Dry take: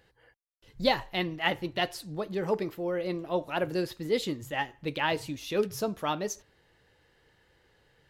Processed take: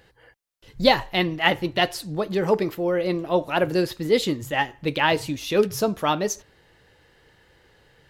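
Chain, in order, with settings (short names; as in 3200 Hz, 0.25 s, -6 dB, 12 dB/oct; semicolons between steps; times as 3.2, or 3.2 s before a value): 2.31–2.75 mismatched tape noise reduction encoder only; gain +8 dB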